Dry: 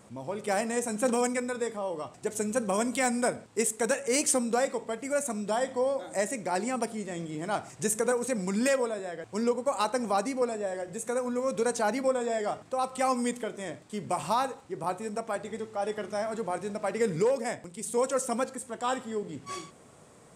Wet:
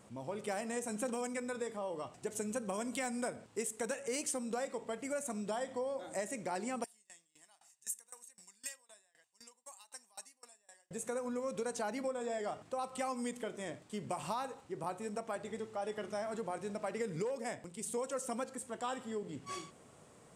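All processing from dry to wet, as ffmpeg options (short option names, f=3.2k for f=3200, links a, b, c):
-filter_complex "[0:a]asettb=1/sr,asplit=3[a][b][c];[a]atrim=end=6.844[d];[b]atrim=start=6.84:end=10.91,asetpts=PTS-STARTPTS,afade=t=in:d=0.004:c=qsin,afade=t=out:st=4.066:d=0.004:c=qsin,aderivative,aecho=1:1:1.1:0.45,atrim=end_sample=179487,aeval=exprs='val(0)*pow(10,-25*if(lt(mod(3.9*n/s,1),2*abs(3.9)/1000),1-mod(3.9*n/s,1)/(2*abs(3.9)/1000),(mod(3.9*n/s,1)-2*abs(3.9)/1000)/(1-2*abs(3.9)/1000))/20)':c=same[e];[c]atrim=start=10.906[f];[d][e]acrossfade=d=0.004:c1=hsin:c2=qsin[g];[g][f]acrossfade=d=0.004:c1=qsin:c2=hsin,equalizer=f=2.9k:w=7.1:g=3,acompressor=threshold=-30dB:ratio=4,volume=-5dB"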